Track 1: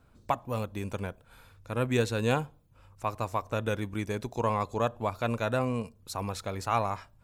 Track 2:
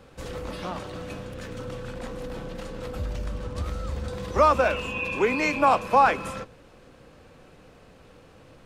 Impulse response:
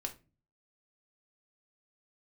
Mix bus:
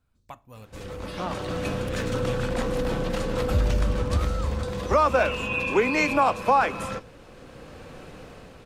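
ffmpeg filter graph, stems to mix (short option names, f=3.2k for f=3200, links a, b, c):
-filter_complex "[0:a]equalizer=f=500:w=0.34:g=-7.5,volume=-10.5dB,asplit=2[a][b];[b]volume=-8.5dB[c];[1:a]dynaudnorm=f=150:g=11:m=13dB,adelay=550,volume=-4dB[d];[2:a]atrim=start_sample=2205[e];[c][e]afir=irnorm=-1:irlink=0[f];[a][d][f]amix=inputs=3:normalize=0,alimiter=limit=-10.5dB:level=0:latency=1:release=341"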